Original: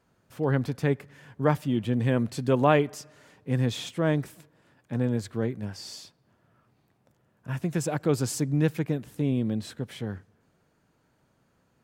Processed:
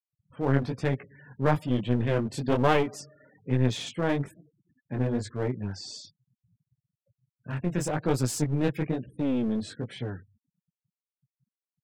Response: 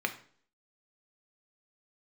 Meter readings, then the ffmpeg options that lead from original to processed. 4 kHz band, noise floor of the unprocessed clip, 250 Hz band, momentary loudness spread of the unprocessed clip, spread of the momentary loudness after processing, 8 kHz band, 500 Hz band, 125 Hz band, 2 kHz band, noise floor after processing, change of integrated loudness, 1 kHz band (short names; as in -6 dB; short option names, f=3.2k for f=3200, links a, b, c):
+0.5 dB, -69 dBFS, -1.0 dB, 12 LU, 12 LU, -0.5 dB, -1.5 dB, -1.0 dB, 0.0 dB, under -85 dBFS, -1.0 dB, 0.0 dB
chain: -af "flanger=delay=15.5:depth=7.4:speed=1.1,afftfilt=real='re*gte(hypot(re,im),0.00316)':imag='im*gte(hypot(re,im),0.00316)':win_size=1024:overlap=0.75,aeval=exprs='clip(val(0),-1,0.0224)':c=same,volume=3.5dB"